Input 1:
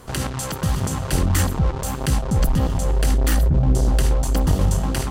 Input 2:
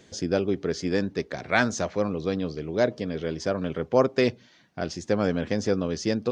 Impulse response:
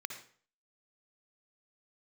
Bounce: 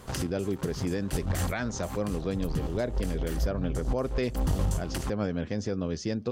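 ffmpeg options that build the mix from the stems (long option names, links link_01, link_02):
-filter_complex "[0:a]volume=-5dB[link_01];[1:a]lowshelf=frequency=130:gain=11,volume=-5dB,asplit=2[link_02][link_03];[link_03]apad=whole_len=225270[link_04];[link_01][link_04]sidechaincompress=threshold=-41dB:ratio=8:attack=27:release=110[link_05];[link_05][link_02]amix=inputs=2:normalize=0,alimiter=limit=-19dB:level=0:latency=1:release=137"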